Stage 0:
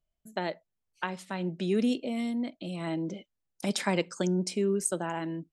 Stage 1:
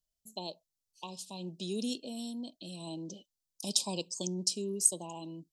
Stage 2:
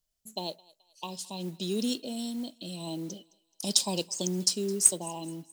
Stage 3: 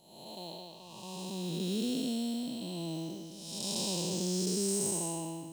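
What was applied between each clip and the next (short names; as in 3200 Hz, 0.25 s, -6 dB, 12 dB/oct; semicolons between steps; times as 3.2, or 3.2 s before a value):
Chebyshev band-stop 1100–2500 Hz, order 5; resonant high shelf 3200 Hz +13 dB, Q 1.5; gain -8.5 dB
thinning echo 0.214 s, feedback 47%, high-pass 670 Hz, level -22 dB; modulation noise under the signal 22 dB; gain +5 dB
time blur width 0.433 s; gain +2.5 dB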